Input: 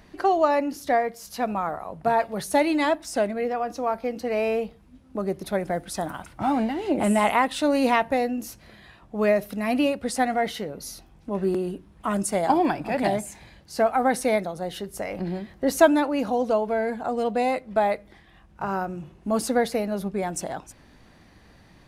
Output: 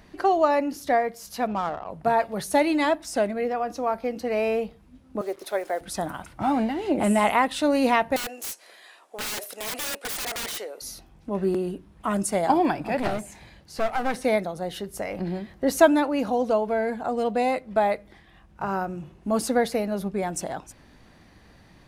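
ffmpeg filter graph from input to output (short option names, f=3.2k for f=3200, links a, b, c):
-filter_complex "[0:a]asettb=1/sr,asplit=3[a][b][c];[a]atrim=end=1.474[d];[b]atrim=start=1.47:end=1.9,asetpts=PTS-STARTPTS,afade=t=in:d=0.004:c=qsin,afade=t=out:st=0.426:d=0.004:c=qsin,acrusher=bits=6:mode=log:mix=0:aa=0.000001,adynamicsmooth=sensitivity=4:basefreq=1.3k[e];[c]atrim=start=1.896[f];[d][e]acrossfade=d=0.004:c1=hsin:c2=qsin[g];[g][f]acrossfade=d=0.004:c1=qsin:c2=hsin,asettb=1/sr,asplit=3[h][i][j];[h]atrim=end=5.214[k];[i]atrim=start=5.21:end=5.81,asetpts=PTS-STARTPTS,afade=t=in:d=0.004:c=qsin,afade=t=out:st=0.596:d=0.004:c=qsin,highpass=f=370:w=0.5412,highpass=f=370:w=1.3066,acrusher=bits=7:mix=0:aa=0.5[l];[j]atrim=start=5.806[m];[k][l]acrossfade=d=0.004:c1=hsin:c2=qsin[n];[n][m]acrossfade=d=0.004:c1=qsin:c2=hsin,asettb=1/sr,asplit=3[o][p][q];[o]atrim=end=8.164[r];[p]atrim=start=8.16:end=10.82,asetpts=PTS-STARTPTS,afade=t=in:d=0.004:c=qsin,afade=t=out:st=2.656:d=0.004:c=qsin,highpass=f=430:w=0.5412,highpass=f=430:w=1.3066,equalizer=f=8.7k:t=o:w=1.3:g=11,aeval=exprs='(mod(20*val(0)+1,2)-1)/20':c=same[s];[q]atrim=start=10.816[t];[r][s]acrossfade=d=0.004:c1=hsin:c2=qsin[u];[u][t]acrossfade=d=0.004:c1=qsin:c2=hsin,asettb=1/sr,asplit=3[v][w][x];[v]atrim=end=12.994[y];[w]atrim=start=12.99:end=14.24,asetpts=PTS-STARTPTS,afade=t=in:d=0.004:c=qsin,afade=t=out:st=1.246:d=0.004:c=qsin,acrossover=split=4100[z][aa];[aa]acompressor=threshold=-42dB:ratio=4:attack=1:release=60[ab];[z][ab]amix=inputs=2:normalize=0,aeval=exprs='clip(val(0),-1,0.0224)':c=same[ac];[x]atrim=start=14.236[ad];[y][ac]acrossfade=d=0.004:c1=hsin:c2=qsin[ae];[ae][ad]acrossfade=d=0.004:c1=qsin:c2=hsin"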